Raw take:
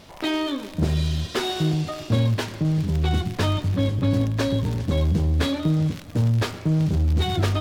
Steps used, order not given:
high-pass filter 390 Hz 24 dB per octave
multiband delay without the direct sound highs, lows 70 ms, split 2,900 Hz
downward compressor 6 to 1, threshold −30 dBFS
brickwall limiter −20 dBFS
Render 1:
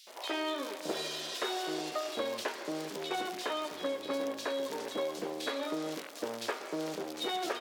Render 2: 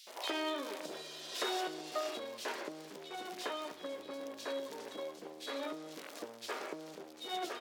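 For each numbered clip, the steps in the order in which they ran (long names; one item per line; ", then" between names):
high-pass filter, then downward compressor, then brickwall limiter, then multiband delay without the direct sound
brickwall limiter, then multiband delay without the direct sound, then downward compressor, then high-pass filter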